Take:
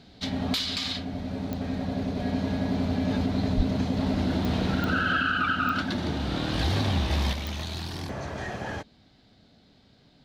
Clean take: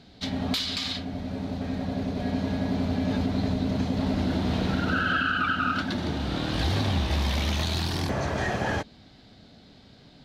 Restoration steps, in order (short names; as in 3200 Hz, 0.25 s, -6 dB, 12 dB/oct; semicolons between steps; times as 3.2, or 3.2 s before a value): de-click; 3.56–3.68 HPF 140 Hz 24 dB/oct; 7.33 gain correction +6.5 dB